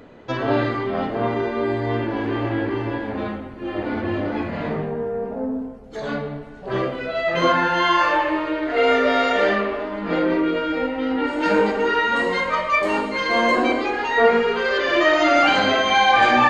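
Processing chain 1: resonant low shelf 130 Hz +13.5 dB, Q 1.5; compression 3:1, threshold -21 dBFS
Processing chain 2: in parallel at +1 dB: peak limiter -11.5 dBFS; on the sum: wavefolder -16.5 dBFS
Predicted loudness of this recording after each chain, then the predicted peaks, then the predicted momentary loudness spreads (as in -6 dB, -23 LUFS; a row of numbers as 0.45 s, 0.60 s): -24.5 LUFS, -21.0 LUFS; -11.5 dBFS, -16.5 dBFS; 6 LU, 4 LU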